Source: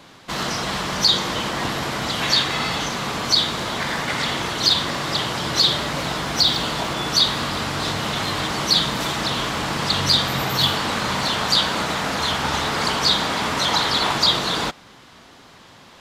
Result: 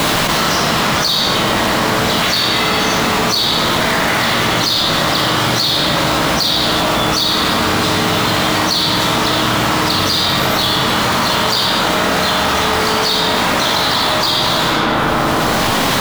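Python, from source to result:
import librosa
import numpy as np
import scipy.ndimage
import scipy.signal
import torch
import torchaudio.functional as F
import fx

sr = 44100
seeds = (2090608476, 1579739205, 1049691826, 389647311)

y = fx.quant_companded(x, sr, bits=4)
y = fx.doubler(y, sr, ms=18.0, db=-12.0)
y = fx.rev_freeverb(y, sr, rt60_s=2.2, hf_ratio=0.5, predelay_ms=5, drr_db=-2.5)
y = fx.env_flatten(y, sr, amount_pct=100)
y = F.gain(torch.from_numpy(y), -3.5).numpy()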